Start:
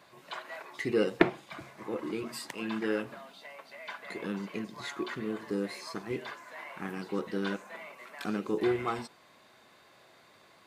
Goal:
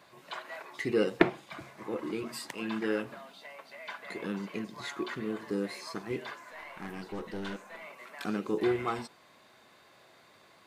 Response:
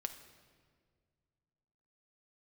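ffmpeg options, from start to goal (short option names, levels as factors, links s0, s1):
-filter_complex "[0:a]asettb=1/sr,asplit=3[s0][s1][s2];[s0]atrim=end=6.514[s3];[s1]atrim=start=6.51:end=7.83,asetpts=PTS-STARTPTS,afade=t=in:d=0.004:c=qsin,afade=t=out:st=1.316:d=0.004:c=qsin,aeval=exprs='(tanh(44.7*val(0)+0.4)-tanh(0.4))/44.7':c=same[s4];[s2]atrim=start=7.826[s5];[s3][s4]acrossfade=d=0.004:c1=hsin:c2=qsin[s6];[s6][s5]acrossfade=d=0.004:c1=qsin:c2=hsin"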